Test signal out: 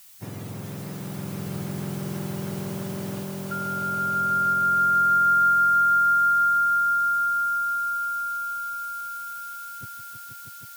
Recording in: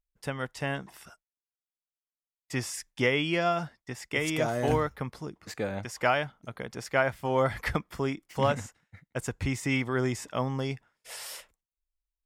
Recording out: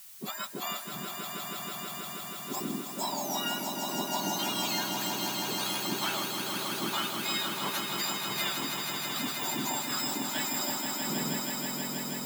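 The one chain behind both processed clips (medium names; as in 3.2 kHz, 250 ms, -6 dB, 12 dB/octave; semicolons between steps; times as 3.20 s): spectrum inverted on a logarithmic axis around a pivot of 1.4 kHz; bass shelf 200 Hz -4 dB; compression, threshold -33 dBFS; added noise blue -51 dBFS; on a send: echo with a slow build-up 160 ms, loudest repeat 5, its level -6.5 dB; on the sum: trim +1.5 dB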